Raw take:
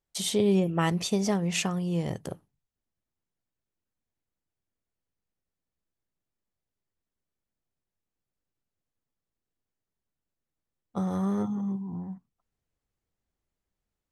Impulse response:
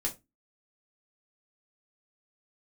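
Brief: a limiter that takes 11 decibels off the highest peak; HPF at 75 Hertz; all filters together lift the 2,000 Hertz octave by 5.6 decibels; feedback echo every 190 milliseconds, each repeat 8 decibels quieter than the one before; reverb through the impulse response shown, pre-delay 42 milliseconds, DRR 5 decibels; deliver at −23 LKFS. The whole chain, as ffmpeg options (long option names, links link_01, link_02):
-filter_complex "[0:a]highpass=75,equalizer=frequency=2000:width_type=o:gain=7,alimiter=limit=-20.5dB:level=0:latency=1,aecho=1:1:190|380|570|760|950:0.398|0.159|0.0637|0.0255|0.0102,asplit=2[link_01][link_02];[1:a]atrim=start_sample=2205,adelay=42[link_03];[link_02][link_03]afir=irnorm=-1:irlink=0,volume=-8.5dB[link_04];[link_01][link_04]amix=inputs=2:normalize=0,volume=5.5dB"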